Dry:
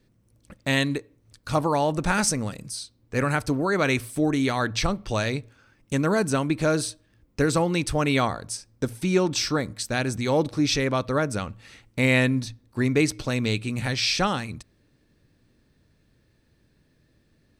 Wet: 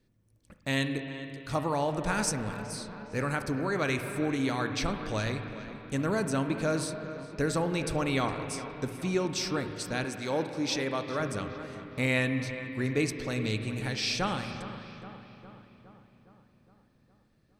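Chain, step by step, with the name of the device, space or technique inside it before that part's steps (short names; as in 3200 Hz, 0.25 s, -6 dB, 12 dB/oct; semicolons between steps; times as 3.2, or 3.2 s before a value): dub delay into a spring reverb (darkening echo 0.412 s, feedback 63%, low-pass 2700 Hz, level -13 dB; spring tank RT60 3.1 s, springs 37/56 ms, chirp 65 ms, DRR 7 dB); 10.04–11.2 HPF 240 Hz 6 dB/oct; gain -7 dB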